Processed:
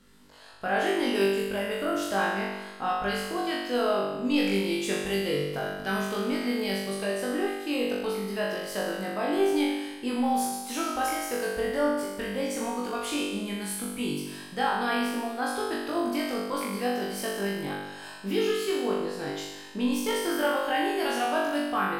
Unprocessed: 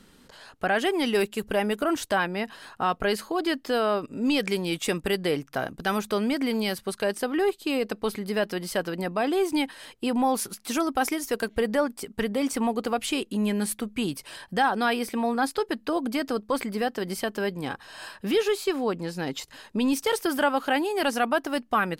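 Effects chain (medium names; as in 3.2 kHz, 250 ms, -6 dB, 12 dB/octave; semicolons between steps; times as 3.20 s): 15.52–17.62 s: treble shelf 5.5 kHz +4.5 dB; flutter echo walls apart 3.5 m, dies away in 1.1 s; trim -8 dB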